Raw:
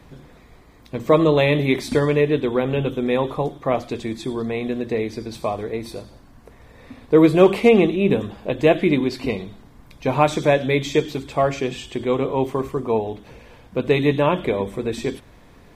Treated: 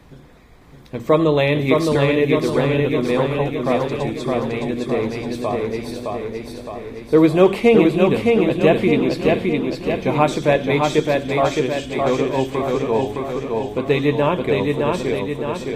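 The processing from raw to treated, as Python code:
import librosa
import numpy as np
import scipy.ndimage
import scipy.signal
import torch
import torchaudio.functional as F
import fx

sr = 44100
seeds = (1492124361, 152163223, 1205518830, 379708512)

y = fx.echo_feedback(x, sr, ms=614, feedback_pct=56, wet_db=-3)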